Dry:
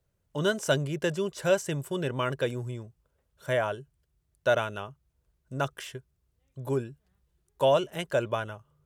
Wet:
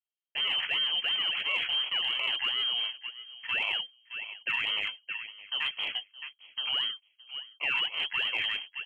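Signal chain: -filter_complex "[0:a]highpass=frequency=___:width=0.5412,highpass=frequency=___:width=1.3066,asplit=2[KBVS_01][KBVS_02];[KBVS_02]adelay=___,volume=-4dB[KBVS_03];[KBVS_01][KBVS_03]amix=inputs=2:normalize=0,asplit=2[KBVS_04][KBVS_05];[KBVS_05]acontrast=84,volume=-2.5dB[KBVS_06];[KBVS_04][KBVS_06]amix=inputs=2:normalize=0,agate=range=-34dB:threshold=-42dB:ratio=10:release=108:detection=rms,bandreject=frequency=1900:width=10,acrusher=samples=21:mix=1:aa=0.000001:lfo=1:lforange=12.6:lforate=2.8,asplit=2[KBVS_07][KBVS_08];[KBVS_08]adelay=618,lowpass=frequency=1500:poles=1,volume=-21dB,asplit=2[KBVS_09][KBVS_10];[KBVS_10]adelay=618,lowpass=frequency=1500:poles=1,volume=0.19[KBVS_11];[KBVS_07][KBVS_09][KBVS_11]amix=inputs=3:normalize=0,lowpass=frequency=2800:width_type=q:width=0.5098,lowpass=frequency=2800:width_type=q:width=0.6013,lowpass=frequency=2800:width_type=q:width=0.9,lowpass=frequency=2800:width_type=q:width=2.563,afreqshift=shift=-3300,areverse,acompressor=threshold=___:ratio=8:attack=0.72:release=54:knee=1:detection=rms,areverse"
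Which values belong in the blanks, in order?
110, 110, 19, -25dB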